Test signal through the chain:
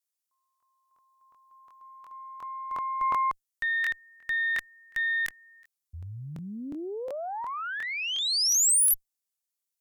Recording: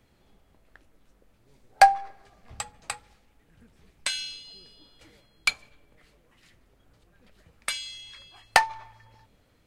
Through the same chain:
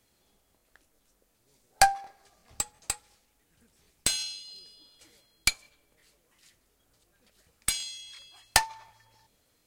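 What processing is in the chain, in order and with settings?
bass and treble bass −5 dB, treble +13 dB
harmonic generator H 8 −21 dB, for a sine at 4.5 dBFS
regular buffer underruns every 0.36 s, samples 1,024, repeat, from 0:00.58
level −6 dB

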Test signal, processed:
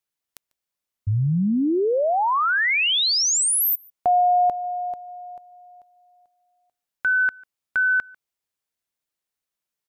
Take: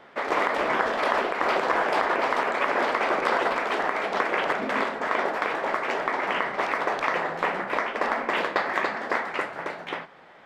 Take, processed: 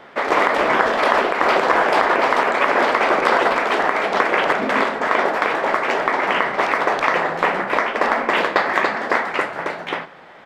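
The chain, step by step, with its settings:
slap from a distant wall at 25 metres, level −25 dB
level +7.5 dB

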